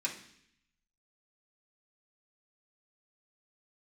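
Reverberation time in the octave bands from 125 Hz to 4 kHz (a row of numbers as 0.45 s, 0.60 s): 1.0 s, 0.90 s, 0.70 s, 0.65 s, 0.85 s, 0.80 s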